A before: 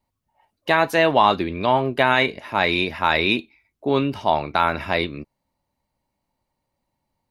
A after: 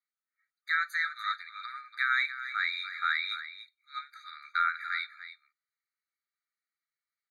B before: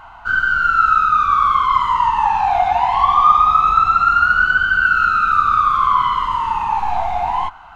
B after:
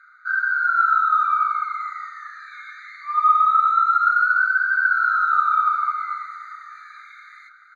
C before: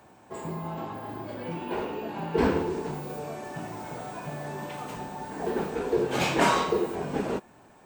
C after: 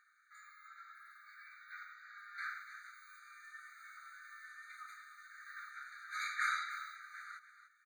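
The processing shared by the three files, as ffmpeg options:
-filter_complex "[0:a]bandpass=frequency=720:width_type=q:width=0.67:csg=0,aemphasis=mode=production:type=50kf,afreqshift=27,asplit=2[link_01][link_02];[link_02]aecho=0:1:291:0.251[link_03];[link_01][link_03]amix=inputs=2:normalize=0,afftfilt=real='re*eq(mod(floor(b*sr/1024/1200),2),1)':imag='im*eq(mod(floor(b*sr/1024/1200),2),1)':win_size=1024:overlap=0.75,volume=-2.5dB"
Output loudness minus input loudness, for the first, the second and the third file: −11.0, −4.0, −14.5 LU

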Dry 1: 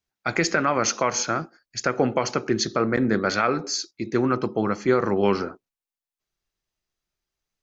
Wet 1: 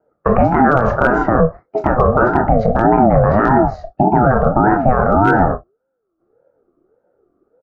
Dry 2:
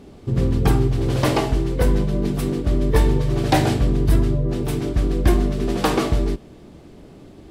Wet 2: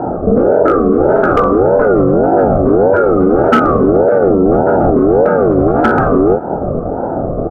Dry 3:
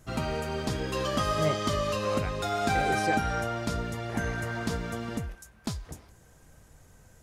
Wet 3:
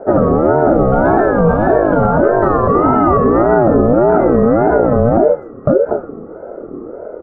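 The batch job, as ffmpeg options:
-filter_complex "[0:a]acrossover=split=450[link_01][link_02];[link_01]acompressor=threshold=-27dB:ratio=16[link_03];[link_02]asuperpass=centerf=860:order=4:qfactor=3.4[link_04];[link_03][link_04]amix=inputs=2:normalize=0,asplit=2[link_05][link_06];[link_06]adelay=25,volume=-8dB[link_07];[link_05][link_07]amix=inputs=2:normalize=0,aecho=1:1:26|37:0.158|0.211,asoftclip=type=hard:threshold=-18.5dB,alimiter=level_in=29dB:limit=-1dB:release=50:level=0:latency=1,aeval=exprs='val(0)*sin(2*PI*430*n/s+430*0.25/1.7*sin(2*PI*1.7*n/s))':channel_layout=same"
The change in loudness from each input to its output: +9.5, +9.5, +18.0 LU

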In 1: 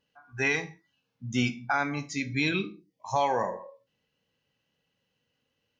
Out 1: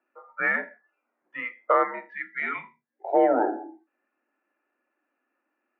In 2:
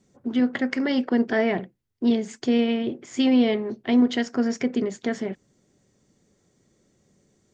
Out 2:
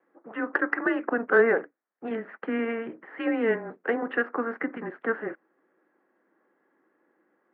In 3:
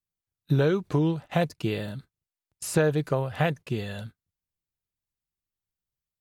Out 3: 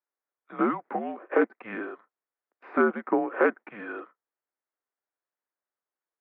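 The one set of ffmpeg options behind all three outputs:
-af "highpass=frequency=440:width_type=q:width=0.5412,highpass=frequency=440:width_type=q:width=1.307,lowpass=frequency=2100:width_type=q:width=0.5176,lowpass=frequency=2100:width_type=q:width=0.7071,lowpass=frequency=2100:width_type=q:width=1.932,afreqshift=-230,highpass=frequency=300:width=0.5412,highpass=frequency=300:width=1.3066,acontrast=82"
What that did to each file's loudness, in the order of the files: +3.0, −4.0, −1.0 LU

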